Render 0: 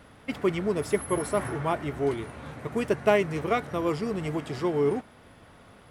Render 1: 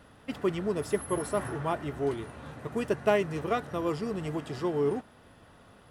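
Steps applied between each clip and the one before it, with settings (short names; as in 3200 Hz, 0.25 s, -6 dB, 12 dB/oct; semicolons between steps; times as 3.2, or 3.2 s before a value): notch 2200 Hz, Q 9.6; gain -3 dB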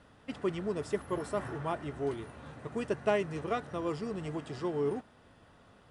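steep low-pass 10000 Hz 96 dB/oct; gain -4 dB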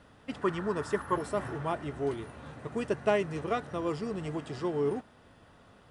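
spectral gain 0.42–1.17, 830–1900 Hz +8 dB; gain +2 dB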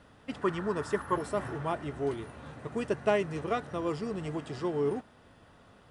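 nothing audible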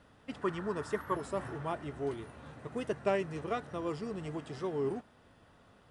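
record warp 33 1/3 rpm, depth 100 cents; gain -4 dB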